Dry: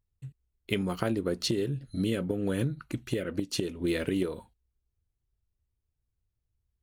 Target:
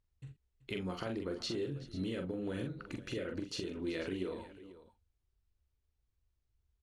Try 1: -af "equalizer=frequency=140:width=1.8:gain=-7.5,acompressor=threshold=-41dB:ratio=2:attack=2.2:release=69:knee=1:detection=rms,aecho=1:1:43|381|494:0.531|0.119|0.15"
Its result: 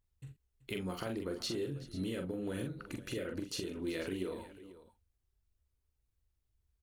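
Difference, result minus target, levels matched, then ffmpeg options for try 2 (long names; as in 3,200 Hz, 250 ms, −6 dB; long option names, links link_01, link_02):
8,000 Hz band +4.0 dB
-af "equalizer=frequency=140:width=1.8:gain=-7.5,acompressor=threshold=-41dB:ratio=2:attack=2.2:release=69:knee=1:detection=rms,lowpass=6200,aecho=1:1:43|381|494:0.531|0.119|0.15"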